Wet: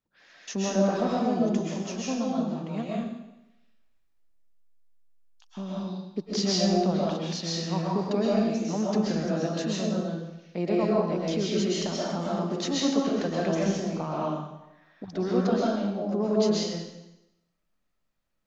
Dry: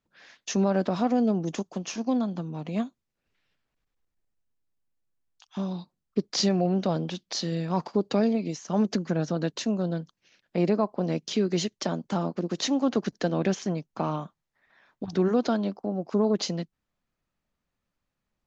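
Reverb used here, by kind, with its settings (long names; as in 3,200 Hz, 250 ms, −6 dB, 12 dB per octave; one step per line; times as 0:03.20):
comb and all-pass reverb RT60 0.91 s, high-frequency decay 1×, pre-delay 90 ms, DRR −5.5 dB
level −5.5 dB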